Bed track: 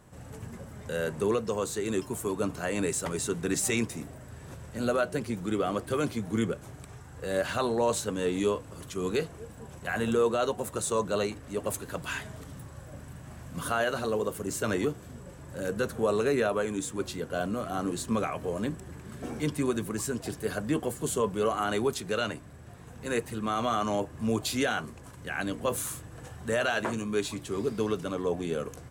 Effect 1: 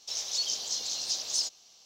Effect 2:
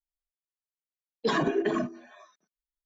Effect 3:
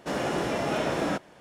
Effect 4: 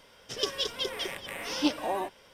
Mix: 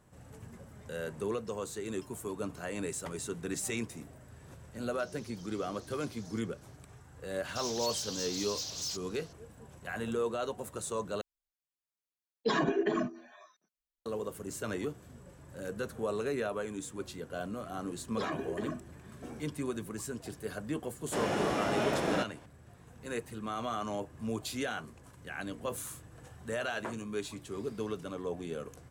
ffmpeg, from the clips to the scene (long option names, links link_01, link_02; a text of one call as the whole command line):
ffmpeg -i bed.wav -i cue0.wav -i cue1.wav -i cue2.wav -filter_complex "[1:a]asplit=2[link_01][link_02];[2:a]asplit=2[link_03][link_04];[0:a]volume=-7.5dB[link_05];[link_01]acompressor=threshold=-42dB:ratio=6:attack=3.2:release=140:knee=1:detection=peak[link_06];[link_02]asoftclip=type=tanh:threshold=-30dB[link_07];[link_05]asplit=2[link_08][link_09];[link_08]atrim=end=11.214[link_10];[link_03]atrim=end=2.85,asetpts=PTS-STARTPTS,volume=-3dB[link_11];[link_09]atrim=start=14.056[link_12];[link_06]atrim=end=1.85,asetpts=PTS-STARTPTS,volume=-13.5dB,afade=type=in:duration=0.004:curve=hsin,afade=type=out:start_time=1.846:duration=0.004:curve=hsin,adelay=4920[link_13];[link_07]atrim=end=1.85,asetpts=PTS-STARTPTS,volume=-3dB,afade=type=in:duration=0.004:curve=hsin,afade=type=out:start_time=1.846:duration=0.004:curve=hsin,adelay=7480[link_14];[link_04]atrim=end=2.85,asetpts=PTS-STARTPTS,volume=-11dB,afade=type=in:duration=0.004:curve=hsin,afade=type=out:start_time=2.846:duration=0.004:curve=hsin,adelay=16920[link_15];[3:a]atrim=end=1.4,asetpts=PTS-STARTPTS,volume=-3.5dB,afade=type=in:duration=0.004:curve=hsin,afade=type=out:start_time=1.396:duration=0.004:curve=hsin,adelay=21060[link_16];[link_10][link_11]acrossfade=duration=0.004:curve1=hsin:curve2=hsin[link_17];[link_17][link_12]acrossfade=duration=0.004:curve1=hsin:curve2=hsin[link_18];[link_18][link_13][link_14][link_15][link_16]amix=inputs=5:normalize=0" out.wav